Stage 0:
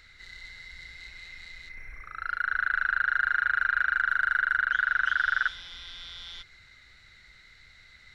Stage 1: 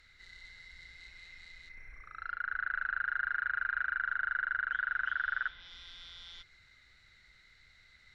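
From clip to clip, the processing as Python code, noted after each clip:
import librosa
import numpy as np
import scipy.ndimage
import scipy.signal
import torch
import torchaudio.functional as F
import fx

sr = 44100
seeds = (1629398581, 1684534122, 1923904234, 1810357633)

y = fx.env_lowpass_down(x, sr, base_hz=2700.0, full_db=-26.5)
y = y * 10.0 ** (-7.5 / 20.0)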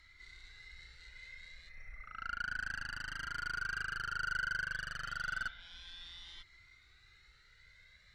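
y = fx.tube_stage(x, sr, drive_db=33.0, bias=0.4)
y = fx.comb_cascade(y, sr, direction='rising', hz=0.31)
y = y * 10.0 ** (4.5 / 20.0)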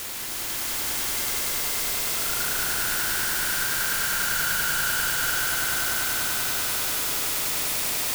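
y = fx.quant_dither(x, sr, seeds[0], bits=6, dither='triangular')
y = fx.echo_swell(y, sr, ms=98, loudest=5, wet_db=-3.5)
y = y * 10.0 ** (2.5 / 20.0)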